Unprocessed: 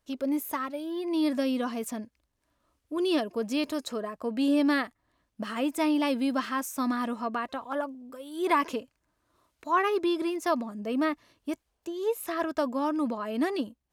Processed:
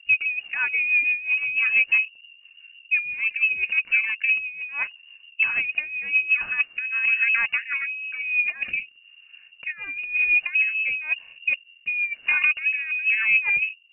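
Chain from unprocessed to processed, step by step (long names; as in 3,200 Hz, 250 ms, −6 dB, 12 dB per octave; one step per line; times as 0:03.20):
low-shelf EQ 120 Hz +7.5 dB
compressor whose output falls as the input rises −30 dBFS, ratio −0.5
spectral tilt −4 dB per octave
voice inversion scrambler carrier 2,800 Hz
rotating-speaker cabinet horn 6 Hz, later 1 Hz, at 0:05.98
level +4 dB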